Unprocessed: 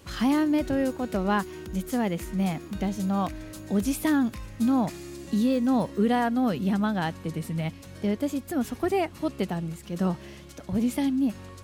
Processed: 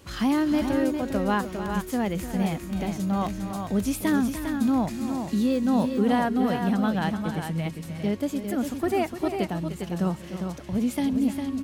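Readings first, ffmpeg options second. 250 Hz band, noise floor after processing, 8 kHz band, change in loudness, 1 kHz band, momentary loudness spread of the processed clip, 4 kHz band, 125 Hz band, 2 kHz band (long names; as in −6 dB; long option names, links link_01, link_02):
+1.0 dB, −39 dBFS, +1.0 dB, +1.0 dB, +1.0 dB, 7 LU, +1.0 dB, +1.0 dB, +1.0 dB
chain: -af "aecho=1:1:300|404:0.266|0.473"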